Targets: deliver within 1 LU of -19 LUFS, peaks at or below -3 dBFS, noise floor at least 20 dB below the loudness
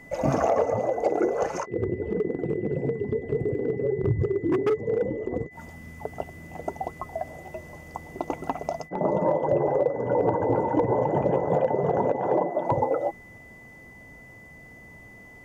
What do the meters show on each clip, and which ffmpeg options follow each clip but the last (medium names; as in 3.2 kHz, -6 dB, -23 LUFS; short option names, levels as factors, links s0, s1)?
steady tone 2 kHz; tone level -47 dBFS; loudness -26.5 LUFS; peak level -11.0 dBFS; loudness target -19.0 LUFS
-> -af "bandreject=f=2000:w=30"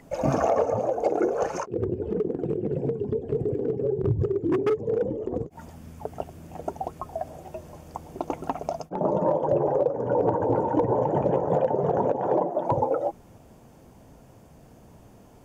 steady tone not found; loudness -26.5 LUFS; peak level -11.5 dBFS; loudness target -19.0 LUFS
-> -af "volume=2.37"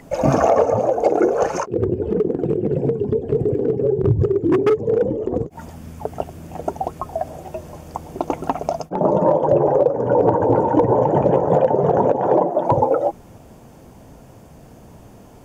loudness -19.0 LUFS; peak level -4.0 dBFS; noise floor -44 dBFS